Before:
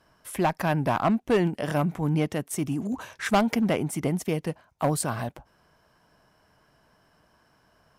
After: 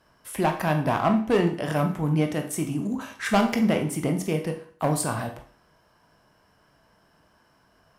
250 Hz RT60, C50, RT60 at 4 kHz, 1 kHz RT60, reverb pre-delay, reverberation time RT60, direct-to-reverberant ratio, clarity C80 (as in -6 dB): 0.50 s, 9.5 dB, 0.45 s, 0.50 s, 19 ms, 0.50 s, 4.0 dB, 14.0 dB